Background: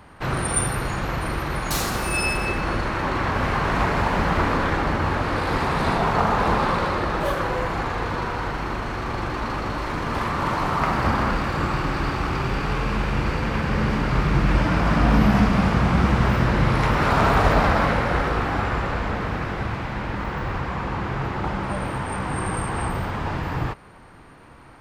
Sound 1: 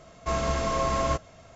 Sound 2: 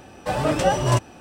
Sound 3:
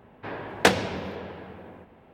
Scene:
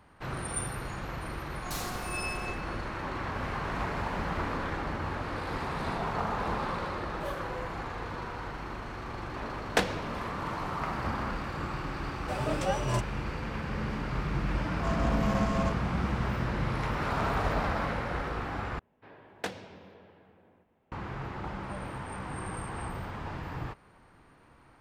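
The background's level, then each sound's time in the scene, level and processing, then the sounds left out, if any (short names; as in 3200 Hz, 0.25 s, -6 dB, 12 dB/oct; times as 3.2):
background -11.5 dB
1.38 add 1 -16 dB + robotiser 361 Hz
9.12 add 3 -7.5 dB
12.02 add 2 -10.5 dB
14.56 add 1 -5.5 dB + Wiener smoothing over 25 samples
18.79 replace with 3 -17 dB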